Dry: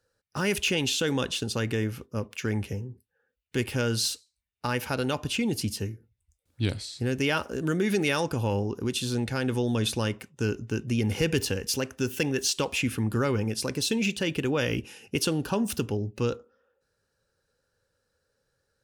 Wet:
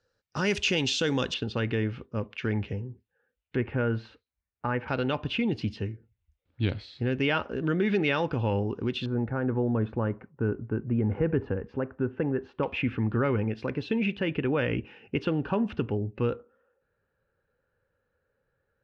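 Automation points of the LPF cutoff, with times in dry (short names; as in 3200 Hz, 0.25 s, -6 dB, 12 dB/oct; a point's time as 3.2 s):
LPF 24 dB/oct
6100 Hz
from 1.34 s 3500 Hz
from 3.56 s 2000 Hz
from 4.88 s 3400 Hz
from 9.06 s 1500 Hz
from 12.63 s 2600 Hz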